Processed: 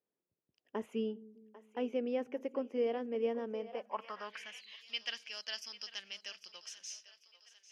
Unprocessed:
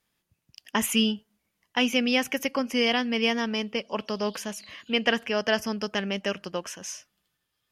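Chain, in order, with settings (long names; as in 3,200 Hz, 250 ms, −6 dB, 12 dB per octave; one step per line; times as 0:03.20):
echo with a time of its own for lows and highs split 380 Hz, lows 200 ms, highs 796 ms, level −16 dB
band-pass filter sweep 430 Hz → 4,500 Hz, 0:03.50–0:04.86
level −3.5 dB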